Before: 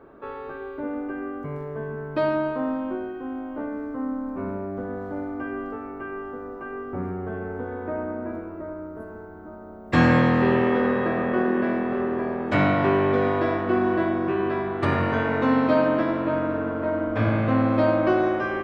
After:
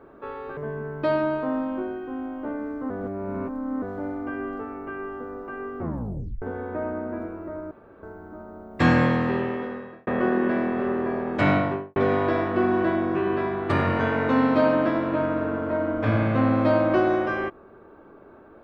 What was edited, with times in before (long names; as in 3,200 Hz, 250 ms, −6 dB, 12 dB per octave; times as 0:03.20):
0:00.57–0:01.70: remove
0:04.03–0:04.95: reverse
0:06.93: tape stop 0.62 s
0:08.84–0:09.16: fill with room tone
0:09.88–0:11.20: fade out
0:12.63–0:13.09: fade out and dull